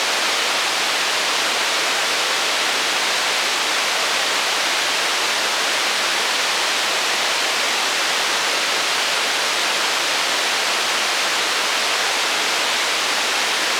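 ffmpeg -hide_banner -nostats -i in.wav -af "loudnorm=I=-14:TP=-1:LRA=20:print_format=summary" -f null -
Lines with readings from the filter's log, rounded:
Input Integrated:    -17.4 LUFS
Input True Peak:      -5.5 dBTP
Input LRA:             0.1 LU
Input Threshold:     -27.4 LUFS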